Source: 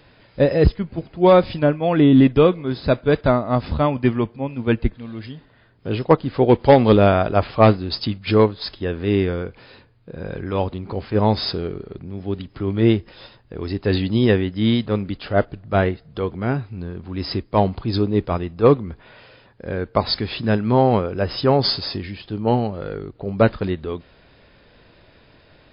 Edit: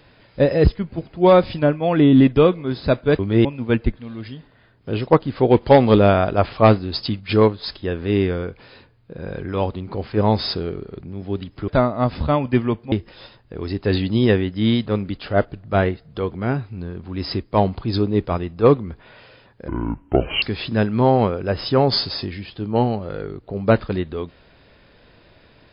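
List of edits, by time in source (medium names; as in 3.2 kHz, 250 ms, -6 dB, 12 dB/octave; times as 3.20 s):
3.19–4.43 s: swap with 12.66–12.92 s
19.68–20.14 s: speed 62%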